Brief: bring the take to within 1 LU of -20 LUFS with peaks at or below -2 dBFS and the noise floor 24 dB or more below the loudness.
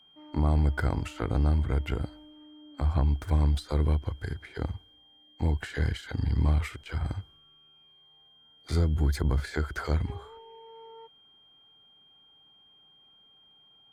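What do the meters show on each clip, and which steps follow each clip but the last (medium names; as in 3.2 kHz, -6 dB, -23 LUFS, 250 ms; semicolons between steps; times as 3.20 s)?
steady tone 3.2 kHz; tone level -57 dBFS; loudness -29.5 LUFS; peak level -15.0 dBFS; loudness target -20.0 LUFS
-> band-stop 3.2 kHz, Q 30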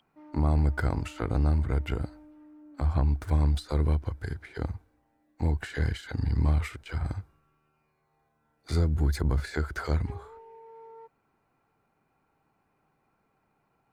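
steady tone not found; loudness -29.5 LUFS; peak level -15.0 dBFS; loudness target -20.0 LUFS
-> trim +9.5 dB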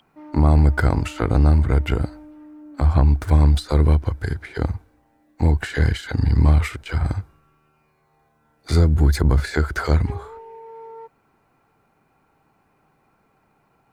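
loudness -20.0 LUFS; peak level -5.5 dBFS; noise floor -64 dBFS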